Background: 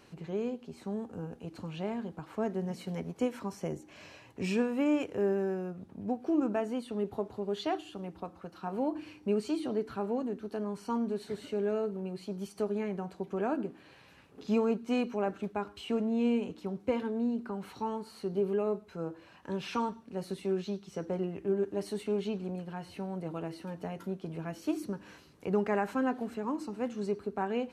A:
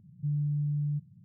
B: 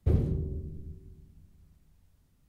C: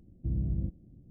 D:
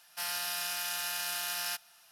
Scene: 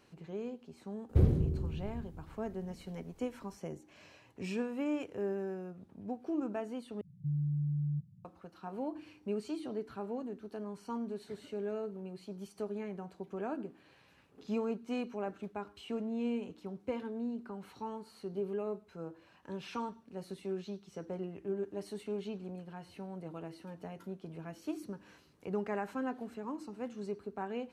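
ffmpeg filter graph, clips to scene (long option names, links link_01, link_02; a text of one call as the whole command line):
ffmpeg -i bed.wav -i cue0.wav -i cue1.wav -filter_complex "[0:a]volume=-6.5dB,asplit=2[link_01][link_02];[link_01]atrim=end=7.014[link_03];[1:a]atrim=end=1.24,asetpts=PTS-STARTPTS,volume=-3.5dB[link_04];[link_02]atrim=start=8.246[link_05];[2:a]atrim=end=2.48,asetpts=PTS-STARTPTS,afade=type=in:duration=0.004:curve=hsin,afade=type=out:start_time=2.476:duration=0.004:curve=hsin,adelay=1090[link_06];[link_03][link_04]acrossfade=duration=0.004:curve1=hsin:curve2=hsin[link_07];[link_07][link_05]acrossfade=duration=0.004:curve1=hsin:curve2=hsin[link_08];[link_08][link_06]amix=inputs=2:normalize=0" out.wav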